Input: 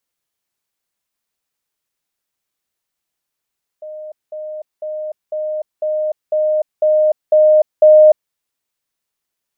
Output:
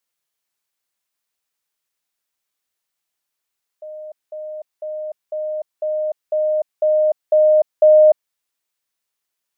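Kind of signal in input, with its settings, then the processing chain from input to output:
level ladder 615 Hz -27.5 dBFS, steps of 3 dB, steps 9, 0.30 s 0.20 s
low shelf 460 Hz -7.5 dB

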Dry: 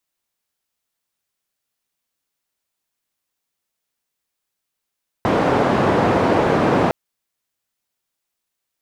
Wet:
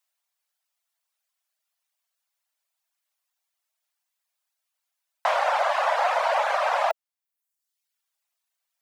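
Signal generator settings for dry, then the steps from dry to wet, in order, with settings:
noise band 120–710 Hz, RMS -16.5 dBFS 1.66 s
steep high-pass 580 Hz 72 dB/oct; reverb removal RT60 0.87 s

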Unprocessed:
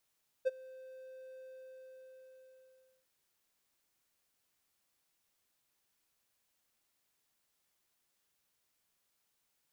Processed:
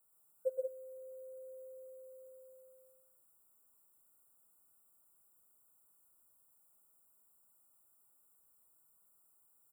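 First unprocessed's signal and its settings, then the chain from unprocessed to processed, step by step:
ADSR triangle 520 Hz, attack 23 ms, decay 25 ms, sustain -23.5 dB, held 0.96 s, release 1.65 s -23 dBFS
FFT band-reject 1500–7100 Hz; high shelf 7900 Hz +10 dB; loudspeakers at several distances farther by 42 m -2 dB, 62 m -6 dB

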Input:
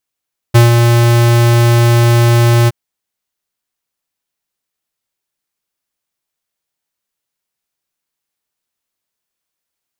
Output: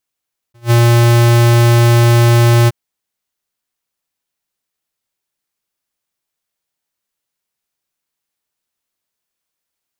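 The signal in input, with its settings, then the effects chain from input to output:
ADSR square 118 Hz, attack 15 ms, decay 0.142 s, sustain -4.5 dB, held 2.14 s, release 29 ms -4 dBFS
attack slew limiter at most 400 dB/s

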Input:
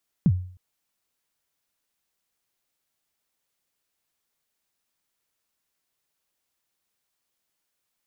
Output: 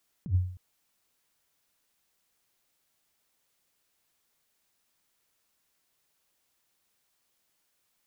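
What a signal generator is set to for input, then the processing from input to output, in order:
kick drum length 0.31 s, from 210 Hz, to 91 Hz, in 54 ms, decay 0.50 s, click off, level -12 dB
negative-ratio compressor -26 dBFS, ratio -0.5

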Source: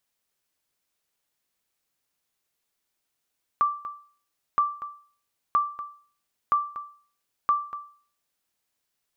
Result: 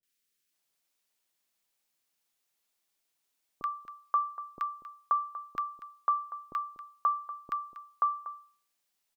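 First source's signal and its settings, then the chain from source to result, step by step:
sonar ping 1170 Hz, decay 0.45 s, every 0.97 s, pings 5, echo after 0.24 s, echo -14 dB -14.5 dBFS
bell 65 Hz -11 dB 2.7 oct; three bands offset in time lows, highs, mids 30/530 ms, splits 460/1400 Hz

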